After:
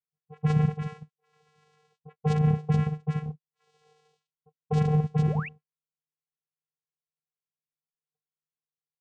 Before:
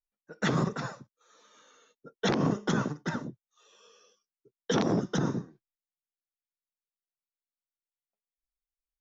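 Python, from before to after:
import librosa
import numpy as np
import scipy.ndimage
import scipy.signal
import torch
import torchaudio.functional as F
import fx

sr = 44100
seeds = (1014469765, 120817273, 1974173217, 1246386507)

y = fx.dispersion(x, sr, late='highs', ms=40.0, hz=900.0)
y = fx.vocoder(y, sr, bands=4, carrier='square', carrier_hz=152.0)
y = fx.spec_paint(y, sr, seeds[0], shape='rise', start_s=5.27, length_s=0.22, low_hz=310.0, high_hz=2900.0, level_db=-42.0)
y = y * 10.0 ** (4.5 / 20.0)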